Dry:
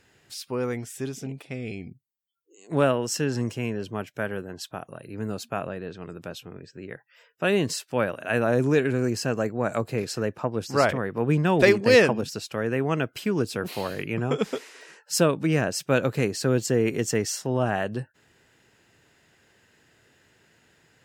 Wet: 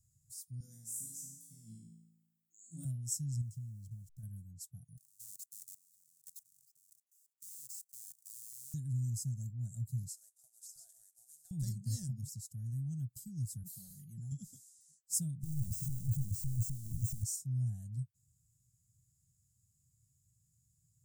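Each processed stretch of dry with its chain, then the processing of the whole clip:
0:00.60–0:02.85: high-pass filter 200 Hz 24 dB per octave + de-essing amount 65% + flutter between parallel walls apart 3.1 metres, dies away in 0.9 s
0:03.41–0:04.23: hold until the input has moved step −47 dBFS + high-shelf EQ 7,500 Hz −9.5 dB + downward compressor 2.5 to 1, threshold −32 dBFS
0:04.97–0:08.74: each half-wave held at its own peak + high-pass filter 1,100 Hz + output level in coarse steps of 19 dB
0:10.08–0:11.51: variable-slope delta modulation 64 kbit/s + Chebyshev high-pass filter 640 Hz, order 4 + downward compressor 4 to 1, threshold −30 dBFS
0:13.63–0:14.32: low-shelf EQ 300 Hz −8.5 dB + comb filter 5.3 ms, depth 70%
0:15.43–0:17.24: sign of each sample alone + de-essing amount 100%
whole clip: elliptic band-stop filter 130–7,500 Hz, stop band 50 dB; parametric band 720 Hz +8 dB 0.32 octaves; level −3.5 dB

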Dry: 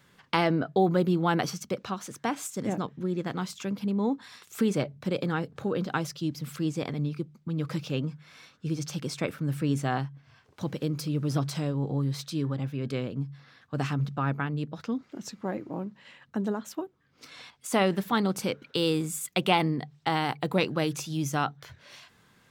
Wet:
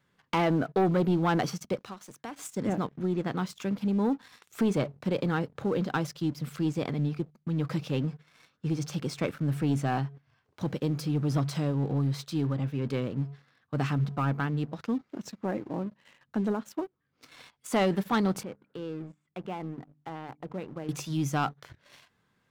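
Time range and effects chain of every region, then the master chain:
0:01.78–0:02.39: downward expander −53 dBFS + high-shelf EQ 4,600 Hz +8 dB + downward compressor 2 to 1, threshold −46 dBFS
0:18.43–0:20.89: mains-hum notches 50/100/150/200/250/300 Hz + downward compressor 1.5 to 1, threshold −51 dBFS + head-to-tape spacing loss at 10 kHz 40 dB
whole clip: high-shelf EQ 3,600 Hz −6.5 dB; leveller curve on the samples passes 2; level −6 dB

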